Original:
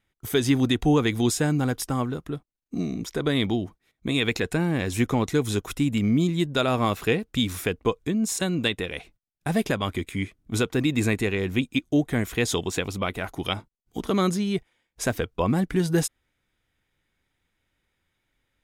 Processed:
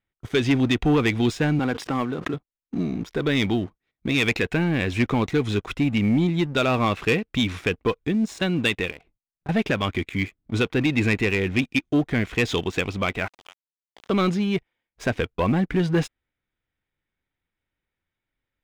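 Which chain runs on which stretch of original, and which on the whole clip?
0:01.59–0:02.34: high-pass filter 180 Hz + background raised ahead of every attack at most 24 dB per second
0:08.91–0:09.49: low-pass filter 1,200 Hz 6 dB per octave + downward compressor, threshold −39 dBFS
0:13.28–0:14.10: high-pass filter 660 Hz 24 dB per octave + downward compressor 8 to 1, threshold −41 dBFS + centre clipping without the shift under −39 dBFS
whole clip: low-pass filter 3,500 Hz 12 dB per octave; dynamic equaliser 2,500 Hz, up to +7 dB, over −44 dBFS, Q 1.6; leveller curve on the samples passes 2; level −5 dB

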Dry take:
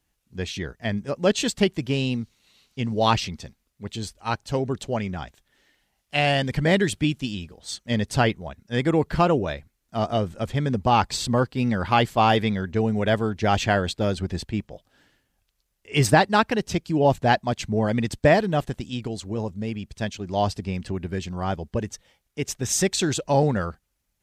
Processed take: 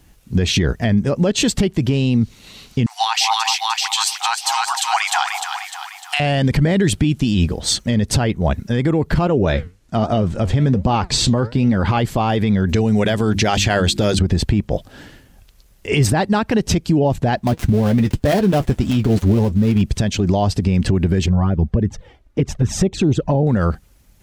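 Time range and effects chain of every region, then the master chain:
0:02.86–0:06.20: linear-phase brick-wall high-pass 700 Hz + spectral tilt +2.5 dB per octave + echo with a time of its own for lows and highs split 890 Hz, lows 201 ms, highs 302 ms, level −9 dB
0:09.27–0:11.98: low-pass filter 9,000 Hz + flanger 1.2 Hz, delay 2.7 ms, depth 9 ms, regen +75%
0:12.69–0:14.19: high-shelf EQ 2,100 Hz +11.5 dB + mains-hum notches 50/100/150/200/250/300/350 Hz
0:17.37–0:19.82: gap after every zero crossing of 0.16 ms + notch comb filter 160 Hz
0:21.26–0:23.47: low-pass filter 1,100 Hz 6 dB per octave + flanger swept by the level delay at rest 3.7 ms, full sweep at −20 dBFS
whole clip: low-shelf EQ 460 Hz +8 dB; downward compressor 6 to 1, threshold −25 dBFS; boost into a limiter +24.5 dB; level −6.5 dB

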